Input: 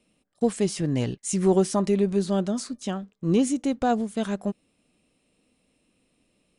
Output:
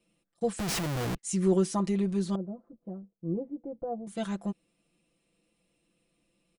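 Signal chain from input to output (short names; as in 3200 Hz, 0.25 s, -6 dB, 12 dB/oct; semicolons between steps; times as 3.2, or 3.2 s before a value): 2.35–4.07 ladder low-pass 780 Hz, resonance 30%; comb 5.9 ms, depth 96%; 0.59–1.16 Schmitt trigger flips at -33.5 dBFS; gain -8 dB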